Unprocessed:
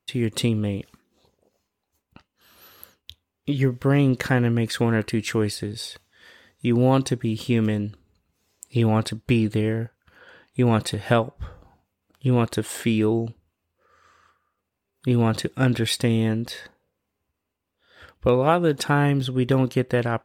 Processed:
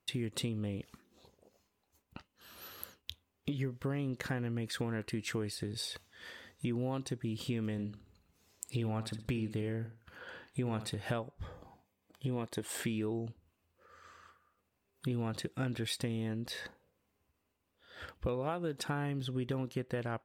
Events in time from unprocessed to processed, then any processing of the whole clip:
0:07.72–0:10.90: flutter between parallel walls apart 10.8 metres, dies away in 0.29 s
0:11.42–0:12.63: notch comb filter 1,400 Hz
whole clip: downward compressor 4 to 1, threshold −36 dBFS

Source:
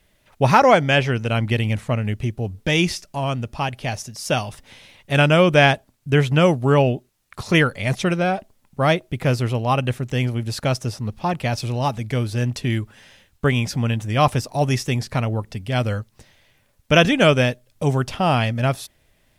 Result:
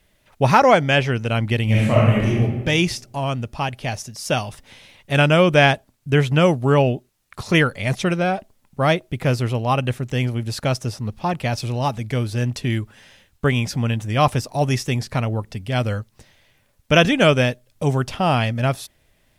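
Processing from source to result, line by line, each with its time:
0:01.64–0:02.40: thrown reverb, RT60 1.2 s, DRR −7 dB

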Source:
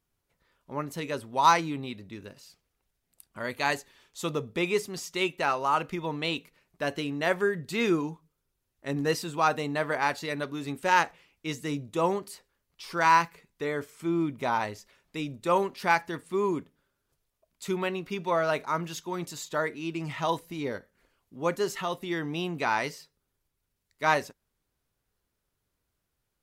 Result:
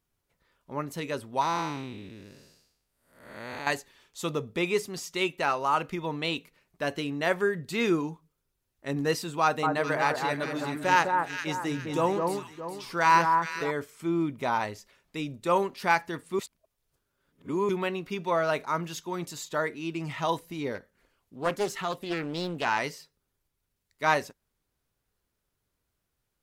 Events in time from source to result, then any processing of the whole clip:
0:01.41–0:03.67: spectrum smeared in time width 336 ms
0:09.42–0:13.71: delay that swaps between a low-pass and a high-pass 207 ms, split 1,500 Hz, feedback 61%, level −3 dB
0:16.39–0:17.69: reverse
0:20.75–0:22.79: highs frequency-modulated by the lows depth 0.41 ms

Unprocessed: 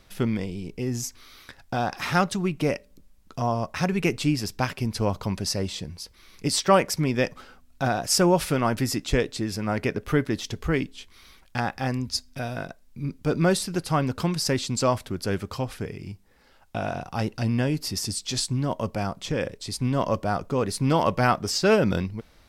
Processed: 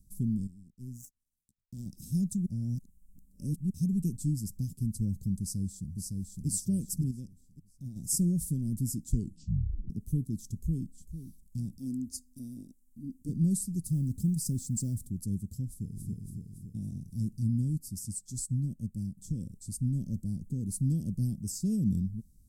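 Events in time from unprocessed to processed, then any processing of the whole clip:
0:00.47–0:01.86: power curve on the samples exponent 2
0:02.46–0:03.70: reverse
0:05.39–0:06.47: delay throw 560 ms, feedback 45%, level −3 dB
0:07.11–0:07.96: clip gain −8.5 dB
0:09.11: tape stop 0.79 s
0:10.55–0:10.95: delay throw 450 ms, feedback 25%, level −11 dB
0:11.79–0:13.29: low shelf with overshoot 210 Hz −8 dB, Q 3
0:13.84–0:15.07: mu-law and A-law mismatch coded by mu
0:15.67–0:16.09: delay throw 280 ms, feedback 60%, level −1 dB
0:17.77–0:19.18: expander for the loud parts, over −39 dBFS
whole clip: elliptic band-stop filter 210–7,900 Hz, stop band 80 dB; level −2 dB

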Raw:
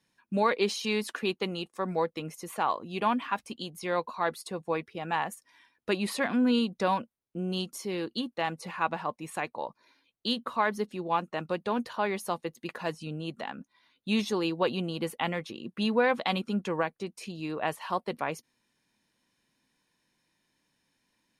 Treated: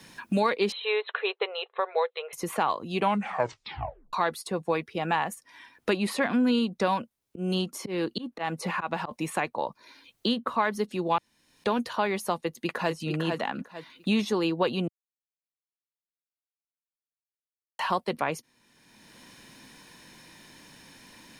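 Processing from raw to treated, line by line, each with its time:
0:00.72–0:02.33: linear-phase brick-wall band-pass 390–4,200 Hz
0:02.98: tape stop 1.15 s
0:06.89–0:09.11: volume swells 201 ms
0:11.18–0:11.64: fill with room tone
0:12.45–0:12.93: delay throw 450 ms, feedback 15%, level −5 dB
0:14.88–0:17.79: silence
whole clip: multiband upward and downward compressor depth 70%; level +3 dB

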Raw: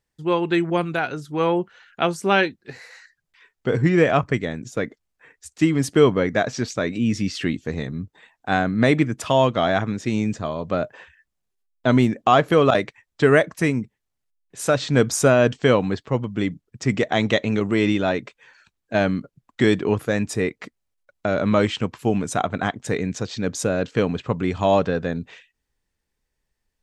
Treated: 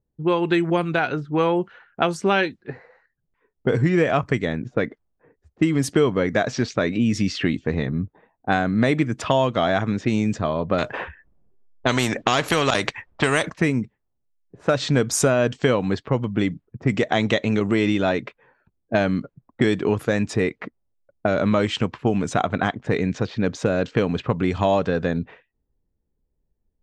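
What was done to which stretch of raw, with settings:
0:10.78–0:13.50: every bin compressed towards the loudest bin 2 to 1
whole clip: low-pass that shuts in the quiet parts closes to 440 Hz, open at −17.5 dBFS; downward compressor 3 to 1, threshold −23 dBFS; level +5.5 dB

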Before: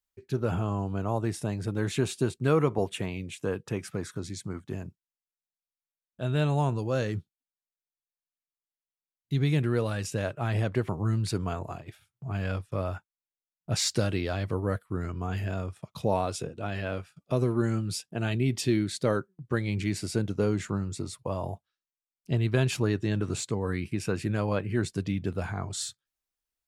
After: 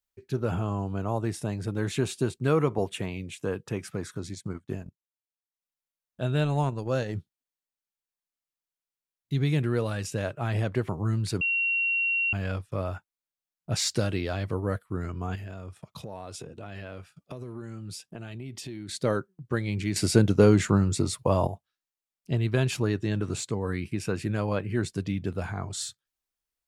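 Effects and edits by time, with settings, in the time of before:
0:04.32–0:07.16: transient designer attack +3 dB, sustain −12 dB
0:11.41–0:12.33: beep over 2,740 Hz −23 dBFS
0:15.35–0:18.89: downward compressor 5 to 1, threshold −36 dBFS
0:19.96–0:21.47: clip gain +8.5 dB

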